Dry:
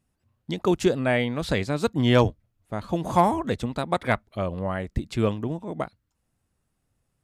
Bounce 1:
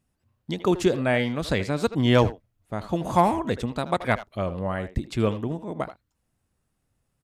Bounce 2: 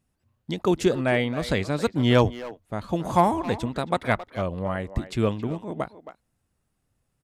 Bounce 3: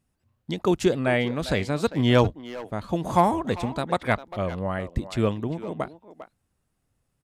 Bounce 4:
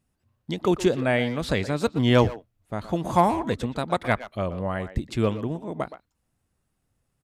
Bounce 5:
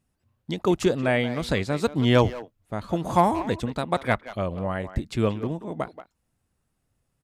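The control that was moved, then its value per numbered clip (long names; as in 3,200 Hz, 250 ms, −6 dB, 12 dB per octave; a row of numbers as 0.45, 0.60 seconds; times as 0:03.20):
far-end echo of a speakerphone, delay time: 80, 270, 400, 120, 180 milliseconds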